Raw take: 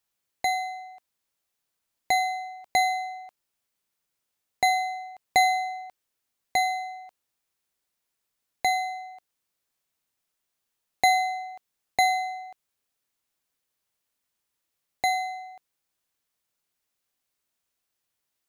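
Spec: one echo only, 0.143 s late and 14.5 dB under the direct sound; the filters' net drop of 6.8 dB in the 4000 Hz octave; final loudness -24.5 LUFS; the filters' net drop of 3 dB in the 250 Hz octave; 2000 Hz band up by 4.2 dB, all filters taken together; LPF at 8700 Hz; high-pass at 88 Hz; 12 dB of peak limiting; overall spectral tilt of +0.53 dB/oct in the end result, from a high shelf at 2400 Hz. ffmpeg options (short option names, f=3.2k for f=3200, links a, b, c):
-af "highpass=88,lowpass=8.7k,equalizer=f=250:t=o:g=-4,equalizer=f=2k:t=o:g=7,highshelf=f=2.4k:g=-4,equalizer=f=4k:t=o:g=-5,alimiter=limit=-20dB:level=0:latency=1,aecho=1:1:143:0.188,volume=5.5dB"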